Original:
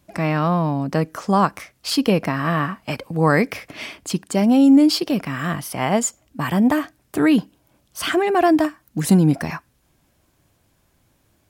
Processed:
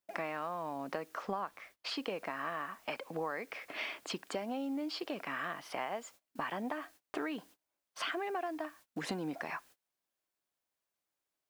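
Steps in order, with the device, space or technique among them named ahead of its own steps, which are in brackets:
baby monitor (band-pass filter 480–3,200 Hz; downward compressor 8 to 1, threshold −33 dBFS, peak gain reduction 19.5 dB; white noise bed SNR 25 dB; noise gate −55 dBFS, range −25 dB)
0:01.22–0:01.97: bass and treble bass +3 dB, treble −4 dB
level −2 dB

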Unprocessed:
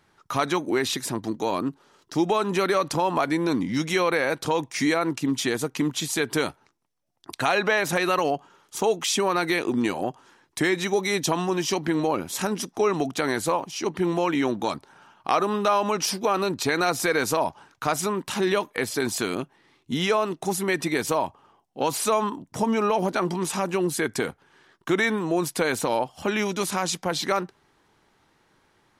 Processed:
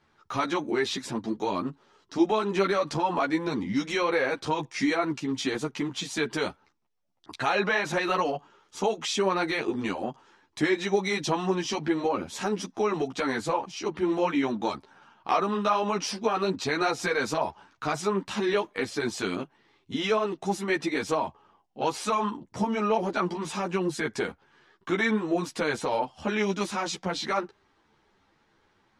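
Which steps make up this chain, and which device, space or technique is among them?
string-machine ensemble chorus (string-ensemble chorus; low-pass filter 5,800 Hz 12 dB per octave)

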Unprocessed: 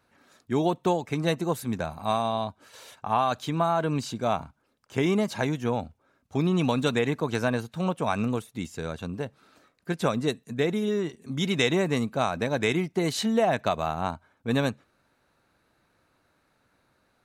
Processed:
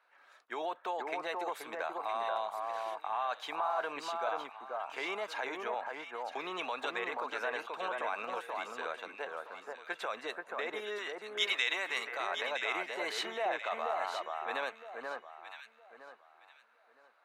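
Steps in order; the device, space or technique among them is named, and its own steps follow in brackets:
DJ mixer with the lows and highs turned down (three-way crossover with the lows and the highs turned down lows −16 dB, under 350 Hz, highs −15 dB, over 3,200 Hz; brickwall limiter −24 dBFS, peak gain reduction 11.5 dB)
0:10.98–0:12.27: tilt shelving filter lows −7.5 dB, about 1,100 Hz
high-pass filter 750 Hz 12 dB per octave
delay that swaps between a low-pass and a high-pass 482 ms, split 1,700 Hz, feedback 50%, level −2.5 dB
level +1.5 dB

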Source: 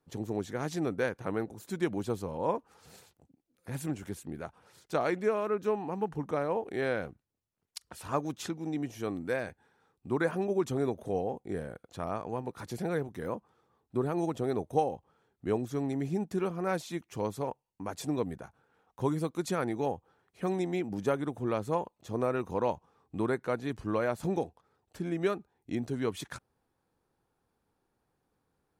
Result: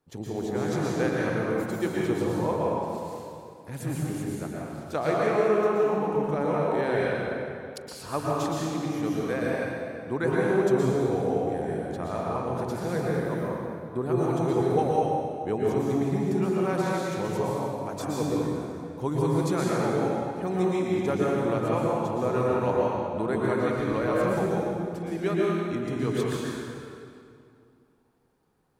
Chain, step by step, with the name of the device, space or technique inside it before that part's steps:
stairwell (convolution reverb RT60 2.4 s, pre-delay 110 ms, DRR −5 dB)

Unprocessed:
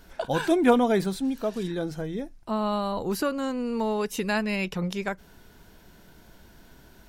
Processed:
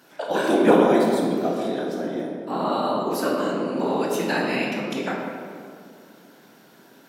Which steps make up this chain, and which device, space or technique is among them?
whispering ghost (random phases in short frames; high-pass filter 210 Hz 24 dB per octave; convolution reverb RT60 2.1 s, pre-delay 17 ms, DRR −2 dB)

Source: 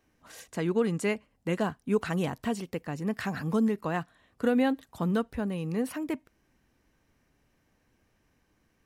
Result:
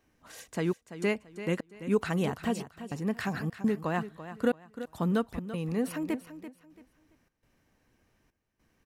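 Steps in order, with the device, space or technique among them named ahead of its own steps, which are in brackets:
trance gate with a delay (gate pattern "xxxxx..xxxx.x" 103 BPM −60 dB; repeating echo 337 ms, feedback 27%, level −12.5 dB)

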